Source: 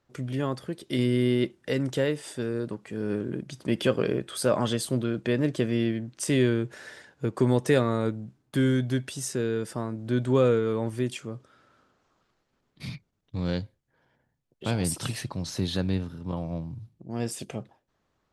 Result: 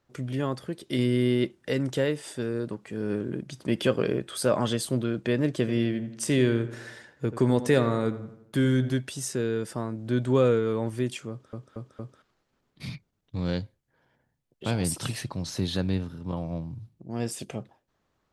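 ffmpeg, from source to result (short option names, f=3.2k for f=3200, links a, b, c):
-filter_complex "[0:a]asettb=1/sr,asplit=3[a][b][c];[a]atrim=end=5.534[d];[b]atrim=start=5.53:end=8.92,asetpts=PTS-STARTPTS,afade=t=in:d=0.004:c=qsin,afade=t=out:st=3.386:d=0.004:c=qsin,asplit=2[e][f];[f]adelay=85,lowpass=f=3k:p=1,volume=-13dB,asplit=2[g][h];[h]adelay=85,lowpass=f=3k:p=1,volume=0.53,asplit=2[i][j];[j]adelay=85,lowpass=f=3k:p=1,volume=0.53,asplit=2[k][l];[l]adelay=85,lowpass=f=3k:p=1,volume=0.53,asplit=2[m][n];[n]adelay=85,lowpass=f=3k:p=1,volume=0.53[o];[e][g][i][k][m][o]amix=inputs=6:normalize=0,atrim=end_sample=149499[p];[c]atrim=start=8.916[q];[d][p]acrossfade=d=0.004:c1=hsin:c2=qsin[r];[r][q]acrossfade=d=0.004:c1=qsin:c2=hsin,asplit=5[s][t][u][v][w];[s]atrim=end=11.532[x];[t]atrim=start=11.298:end=11.532[y];[u]atrim=start=11.298:end=11.532[z];[v]atrim=start=11.298:end=11.532[aa];[w]atrim=start=12.218[ab];[x][y]acrossfade=d=0.004:c1=hsin:c2=hsin[ac];[ac][z]acrossfade=d=0.004:c1=hsin:c2=hsin[ad];[ad][aa]acrossfade=d=0.004:c1=hsin:c2=hsin[ae];[ae][ab]acrossfade=d=0.004:c1=hsin:c2=hsin"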